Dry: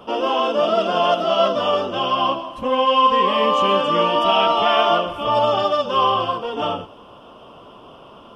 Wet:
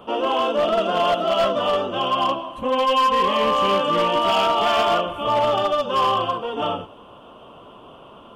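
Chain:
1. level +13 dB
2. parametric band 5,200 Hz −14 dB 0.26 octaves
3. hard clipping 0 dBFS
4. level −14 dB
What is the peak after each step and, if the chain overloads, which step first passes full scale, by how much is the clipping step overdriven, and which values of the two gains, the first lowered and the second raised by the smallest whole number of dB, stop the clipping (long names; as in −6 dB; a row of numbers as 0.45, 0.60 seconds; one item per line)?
+9.0, +9.0, 0.0, −14.0 dBFS
step 1, 9.0 dB
step 1 +4 dB, step 4 −5 dB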